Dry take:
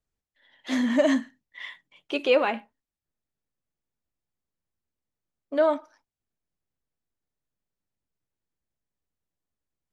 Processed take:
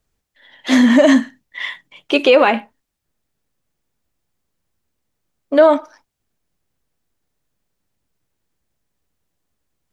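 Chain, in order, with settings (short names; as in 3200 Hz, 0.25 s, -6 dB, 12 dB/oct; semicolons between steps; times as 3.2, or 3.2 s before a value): maximiser +14.5 dB; gain -1 dB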